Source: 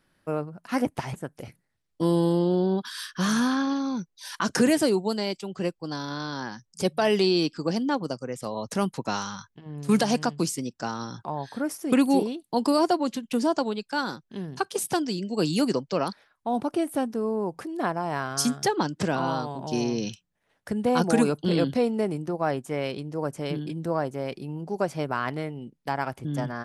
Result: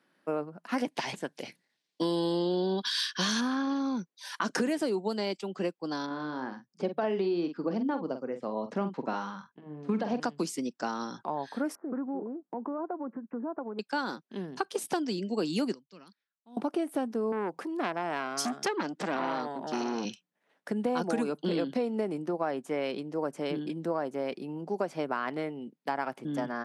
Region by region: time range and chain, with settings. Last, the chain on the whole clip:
0.78–3.41 bell 4300 Hz +13 dB 2 oct + notch 1300 Hz, Q 7.5
6.06–10.2 tape spacing loss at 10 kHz 29 dB + doubler 46 ms -9.5 dB
11.75–13.79 steep low-pass 1600 Hz 48 dB/oct + compressor 3:1, threshold -35 dBFS
15.74–16.57 passive tone stack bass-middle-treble 6-0-2 + upward expander, over -60 dBFS
17.32–20.05 HPF 150 Hz + core saturation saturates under 1800 Hz
whole clip: HPF 200 Hz 24 dB/oct; high shelf 6000 Hz -10 dB; compressor, threshold -26 dBFS

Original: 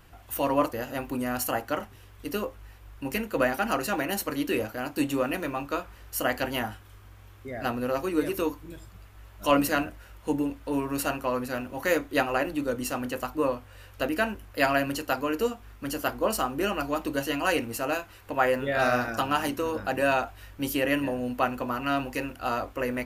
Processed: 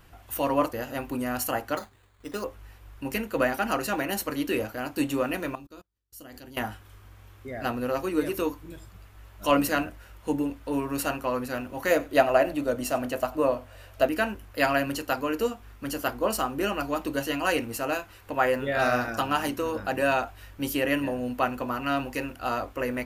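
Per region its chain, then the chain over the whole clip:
1.77–2.44 low shelf 390 Hz -6 dB + expander -50 dBFS + careless resampling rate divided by 8×, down filtered, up hold
5.55–6.57 band shelf 1200 Hz -9 dB 2.7 oct + level quantiser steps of 22 dB + upward expander 2.5:1, over -56 dBFS
11.9–14.06 bell 650 Hz +14.5 dB 0.22 oct + echo 93 ms -21.5 dB
whole clip: dry

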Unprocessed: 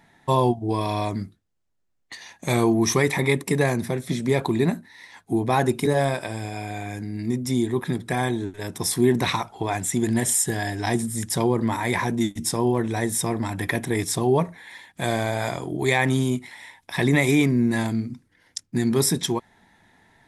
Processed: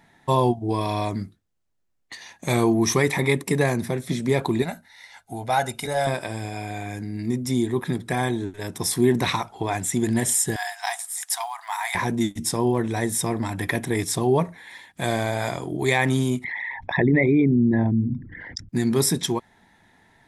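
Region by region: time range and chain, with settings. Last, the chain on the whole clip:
4.62–6.07 bell 170 Hz -12 dB 2.5 oct + notch 2200 Hz, Q 28 + comb 1.4 ms, depth 63%
10.56–11.95 brick-wall FIR high-pass 660 Hz + high shelf 11000 Hz +6 dB + short-mantissa float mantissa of 4-bit
16.44–18.69 formant sharpening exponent 2 + LPF 2100 Hz + fast leveller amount 50%
whole clip: dry

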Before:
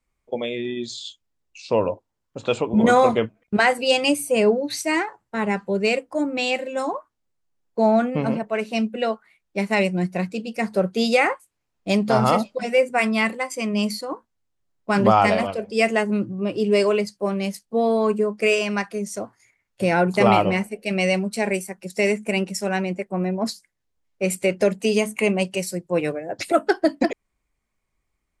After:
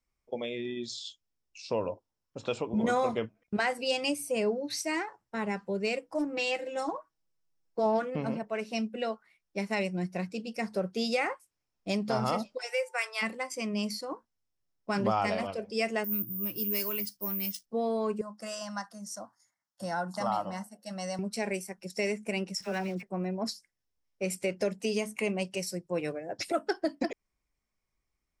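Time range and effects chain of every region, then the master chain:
6.02–8.16 comb 6.2 ms, depth 70% + Doppler distortion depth 0.29 ms
12.57–13.21 rippled Chebyshev high-pass 370 Hz, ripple 6 dB + tilt +3 dB/oct + whine 890 Hz -50 dBFS
16.04–17.66 bell 560 Hz -13 dB 1.5 oct + careless resampling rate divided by 3×, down none, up zero stuff
18.21–21.19 HPF 220 Hz + fixed phaser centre 1000 Hz, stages 4
22.55–23.03 block floating point 5-bit + high shelf 7400 Hz -10.5 dB + dispersion lows, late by 54 ms, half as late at 1200 Hz
whole clip: bell 5400 Hz +10 dB 0.22 oct; compressor 1.5:1, threshold -24 dBFS; gain -7.5 dB

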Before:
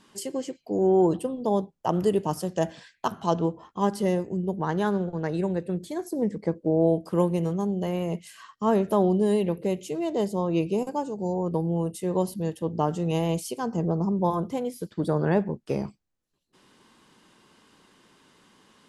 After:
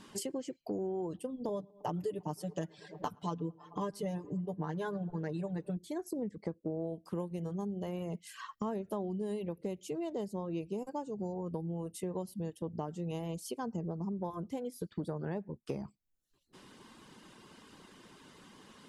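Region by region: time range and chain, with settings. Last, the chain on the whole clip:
1.48–5.77 comb 6.8 ms, depth 80% + darkening echo 0.108 s, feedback 76%, low-pass 3200 Hz, level -20 dB
whole clip: reverb removal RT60 0.58 s; low shelf 420 Hz +3.5 dB; compressor 5:1, threshold -39 dBFS; gain +2.5 dB

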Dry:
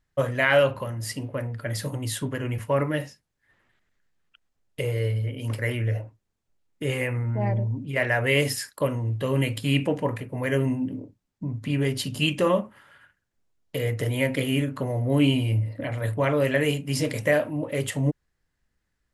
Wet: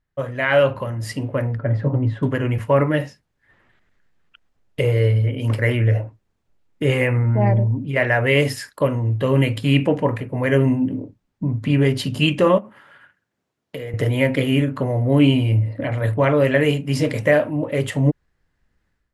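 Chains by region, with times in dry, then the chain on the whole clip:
1.57–2.23 Bessel low-pass 930 Hz + comb 7.4 ms, depth 38%
12.58–13.94 HPF 140 Hz + compressor 5:1, threshold -36 dBFS
whole clip: high shelf 4700 Hz -11.5 dB; AGC gain up to 11.5 dB; gain -2 dB

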